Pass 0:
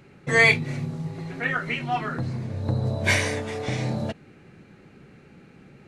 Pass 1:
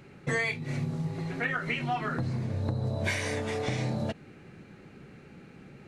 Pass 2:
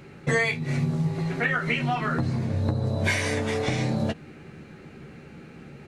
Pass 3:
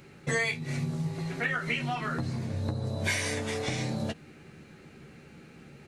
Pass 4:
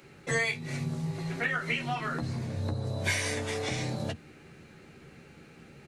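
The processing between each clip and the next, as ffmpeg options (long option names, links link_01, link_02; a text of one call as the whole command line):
ffmpeg -i in.wav -af "acompressor=threshold=-26dB:ratio=16" out.wav
ffmpeg -i in.wav -filter_complex "[0:a]asplit=2[link_01][link_02];[link_02]adelay=13,volume=-9.5dB[link_03];[link_01][link_03]amix=inputs=2:normalize=0,volume=5dB" out.wav
ffmpeg -i in.wav -af "highshelf=frequency=3500:gain=8.5,volume=-6.5dB" out.wav
ffmpeg -i in.wav -filter_complex "[0:a]acrossover=split=200[link_01][link_02];[link_01]adelay=30[link_03];[link_03][link_02]amix=inputs=2:normalize=0" out.wav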